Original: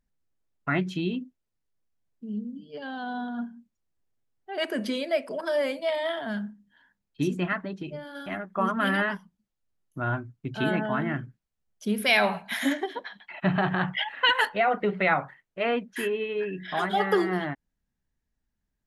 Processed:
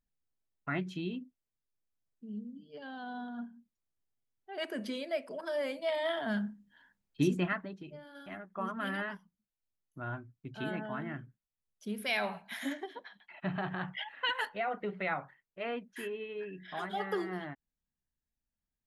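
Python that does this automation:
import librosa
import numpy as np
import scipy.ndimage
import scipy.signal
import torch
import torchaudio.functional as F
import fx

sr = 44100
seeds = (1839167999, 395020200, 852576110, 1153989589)

y = fx.gain(x, sr, db=fx.line((5.56, -8.5), (6.32, -1.5), (7.33, -1.5), (7.82, -11.0)))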